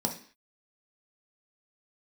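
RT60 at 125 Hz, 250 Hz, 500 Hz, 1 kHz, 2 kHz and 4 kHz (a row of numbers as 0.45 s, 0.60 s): 0.35 s, 0.45 s, 0.45 s, 0.45 s, 0.55 s, no reading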